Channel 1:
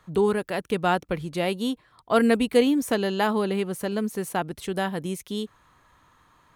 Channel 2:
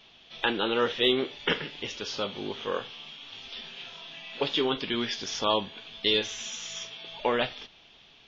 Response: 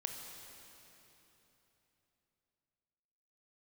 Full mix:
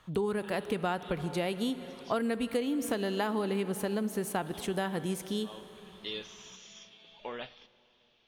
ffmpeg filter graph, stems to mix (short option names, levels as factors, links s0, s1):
-filter_complex "[0:a]volume=0.596,asplit=3[s0][s1][s2];[s1]volume=0.447[s3];[1:a]volume=0.178,asplit=2[s4][s5];[s5]volume=0.158[s6];[s2]apad=whole_len=365055[s7];[s4][s7]sidechaincompress=threshold=0.00631:ratio=8:attack=16:release=414[s8];[2:a]atrim=start_sample=2205[s9];[s3][s6]amix=inputs=2:normalize=0[s10];[s10][s9]afir=irnorm=-1:irlink=0[s11];[s0][s8][s11]amix=inputs=3:normalize=0,acompressor=threshold=0.0447:ratio=10"